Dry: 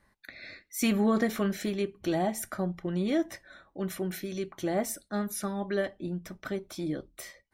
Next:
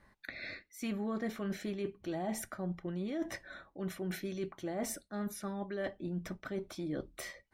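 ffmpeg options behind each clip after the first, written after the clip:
ffmpeg -i in.wav -af "highshelf=frequency=5800:gain=-9,areverse,acompressor=threshold=-38dB:ratio=6,areverse,volume=3dB" out.wav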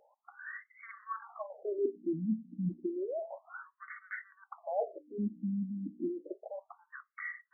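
ffmpeg -i in.wav -af "aeval=exprs='val(0)+0.00251*(sin(2*PI*60*n/s)+sin(2*PI*2*60*n/s)/2+sin(2*PI*3*60*n/s)/3+sin(2*PI*4*60*n/s)/4+sin(2*PI*5*60*n/s)/5)':channel_layout=same,highpass=frequency=140:width=0.5412,highpass=frequency=140:width=1.3066,afftfilt=real='re*between(b*sr/1024,210*pow(1600/210,0.5+0.5*sin(2*PI*0.31*pts/sr))/1.41,210*pow(1600/210,0.5+0.5*sin(2*PI*0.31*pts/sr))*1.41)':imag='im*between(b*sr/1024,210*pow(1600/210,0.5+0.5*sin(2*PI*0.31*pts/sr))/1.41,210*pow(1600/210,0.5+0.5*sin(2*PI*0.31*pts/sr))*1.41)':win_size=1024:overlap=0.75,volume=7.5dB" out.wav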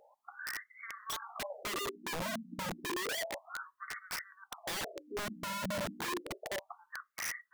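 ffmpeg -i in.wav -af "alimiter=level_in=3dB:limit=-24dB:level=0:latency=1:release=464,volume=-3dB,aeval=exprs='(mod(66.8*val(0)+1,2)-1)/66.8':channel_layout=same,volume=4dB" out.wav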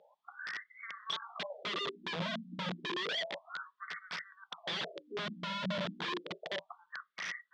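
ffmpeg -i in.wav -af "highpass=170,equalizer=frequency=170:width_type=q:width=4:gain=10,equalizer=frequency=280:width_type=q:width=4:gain=-6,equalizer=frequency=810:width_type=q:width=4:gain=-4,equalizer=frequency=3400:width_type=q:width=4:gain=8,lowpass=frequency=4600:width=0.5412,lowpass=frequency=4600:width=1.3066" out.wav

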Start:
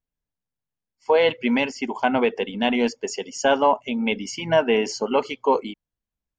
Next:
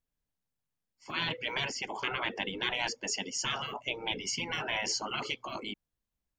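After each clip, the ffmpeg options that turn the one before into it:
ffmpeg -i in.wav -af "afftfilt=real='re*lt(hypot(re,im),0.141)':imag='im*lt(hypot(re,im),0.141)':win_size=1024:overlap=0.75" out.wav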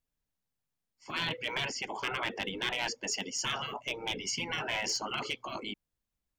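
ffmpeg -i in.wav -af "aeval=exprs='clip(val(0),-1,0.0531)':channel_layout=same" out.wav

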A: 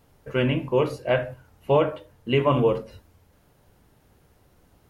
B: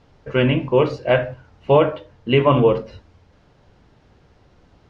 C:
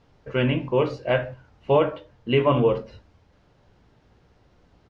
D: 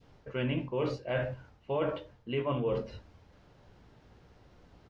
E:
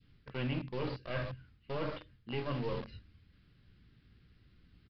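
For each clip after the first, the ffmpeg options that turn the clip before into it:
ffmpeg -i in.wav -af "lowpass=frequency=5600:width=0.5412,lowpass=frequency=5600:width=1.3066,volume=5.5dB" out.wav
ffmpeg -i in.wav -filter_complex "[0:a]asplit=2[link_01][link_02];[link_02]adelay=17,volume=-13dB[link_03];[link_01][link_03]amix=inputs=2:normalize=0,volume=-5dB" out.wav
ffmpeg -i in.wav -af "adynamicequalizer=threshold=0.0158:dfrequency=1100:dqfactor=0.76:tfrequency=1100:tqfactor=0.76:attack=5:release=100:ratio=0.375:range=2:mode=cutabove:tftype=bell,areverse,acompressor=threshold=-29dB:ratio=6,areverse" out.wav
ffmpeg -i in.wav -filter_complex "[0:a]bandreject=frequency=920:width=8.2,acrossover=split=320|1400[link_01][link_02][link_03];[link_02]acrusher=bits=4:dc=4:mix=0:aa=0.000001[link_04];[link_01][link_04][link_03]amix=inputs=3:normalize=0,aresample=11025,aresample=44100,volume=-3dB" out.wav

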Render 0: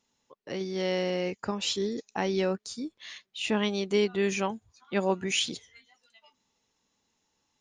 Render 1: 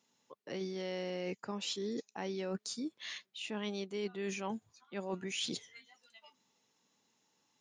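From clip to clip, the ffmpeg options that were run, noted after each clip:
ffmpeg -i in.wav -af "highpass=frequency=120:width=0.5412,highpass=frequency=120:width=1.3066,areverse,acompressor=threshold=-35dB:ratio=10,areverse" out.wav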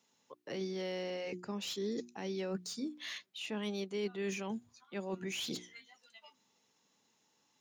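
ffmpeg -i in.wav -filter_complex "[0:a]bandreject=frequency=60:width_type=h:width=6,bandreject=frequency=120:width_type=h:width=6,bandreject=frequency=180:width_type=h:width=6,bandreject=frequency=240:width_type=h:width=6,bandreject=frequency=300:width_type=h:width=6,bandreject=frequency=360:width_type=h:width=6,acrossover=split=450|2200[link_01][link_02][link_03];[link_02]alimiter=level_in=15dB:limit=-24dB:level=0:latency=1:release=253,volume=-15dB[link_04];[link_03]asoftclip=type=tanh:threshold=-39dB[link_05];[link_01][link_04][link_05]amix=inputs=3:normalize=0,volume=1.5dB" out.wav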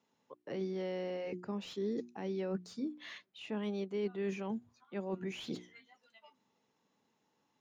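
ffmpeg -i in.wav -af "lowpass=frequency=1300:poles=1,volume=1.5dB" out.wav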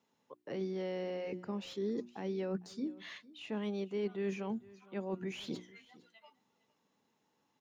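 ffmpeg -i in.wav -af "aecho=1:1:456:0.0891" out.wav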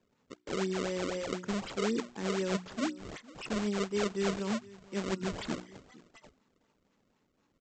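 ffmpeg -i in.wav -af "equalizer=frequency=730:width_type=o:width=0.4:gain=-12.5,aresample=16000,acrusher=samples=11:mix=1:aa=0.000001:lfo=1:lforange=17.6:lforate=4,aresample=44100,volume=5.5dB" out.wav

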